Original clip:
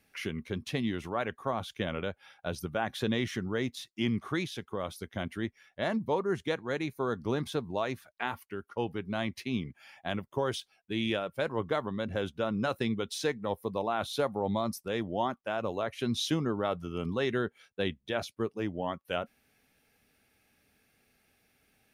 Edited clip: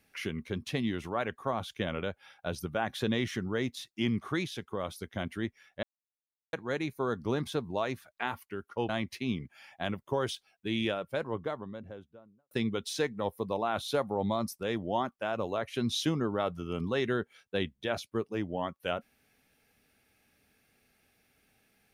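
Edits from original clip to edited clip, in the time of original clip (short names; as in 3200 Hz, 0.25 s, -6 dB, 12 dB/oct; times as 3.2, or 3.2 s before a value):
5.83–6.53 mute
8.89–9.14 cut
11–12.76 studio fade out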